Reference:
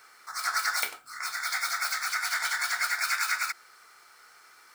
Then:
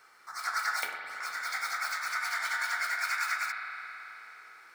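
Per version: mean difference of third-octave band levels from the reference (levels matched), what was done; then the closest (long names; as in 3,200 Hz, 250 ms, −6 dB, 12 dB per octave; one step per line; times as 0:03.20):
4.0 dB: high-shelf EQ 3,600 Hz −7 dB
spring reverb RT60 3.8 s, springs 52 ms, chirp 30 ms, DRR 3 dB
level −2.5 dB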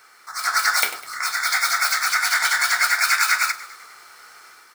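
1.5 dB: automatic gain control gain up to 6 dB
echo with shifted repeats 101 ms, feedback 59%, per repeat −33 Hz, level −17 dB
level +3.5 dB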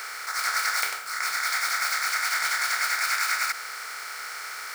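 5.5 dB: compressor on every frequency bin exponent 0.4
parametric band 260 Hz −11.5 dB 0.25 octaves
level −2 dB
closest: second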